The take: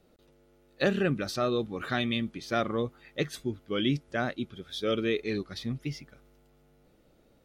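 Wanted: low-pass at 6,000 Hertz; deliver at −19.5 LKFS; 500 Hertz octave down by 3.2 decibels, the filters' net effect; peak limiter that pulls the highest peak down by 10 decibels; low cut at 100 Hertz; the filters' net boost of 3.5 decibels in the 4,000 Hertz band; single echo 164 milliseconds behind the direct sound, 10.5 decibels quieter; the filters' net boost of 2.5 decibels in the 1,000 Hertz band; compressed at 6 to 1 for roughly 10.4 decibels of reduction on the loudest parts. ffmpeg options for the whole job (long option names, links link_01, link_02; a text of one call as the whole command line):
ffmpeg -i in.wav -af "highpass=100,lowpass=6000,equalizer=frequency=500:width_type=o:gain=-5.5,equalizer=frequency=1000:width_type=o:gain=5.5,equalizer=frequency=4000:width_type=o:gain=4.5,acompressor=threshold=-34dB:ratio=6,alimiter=level_in=5.5dB:limit=-24dB:level=0:latency=1,volume=-5.5dB,aecho=1:1:164:0.299,volume=21.5dB" out.wav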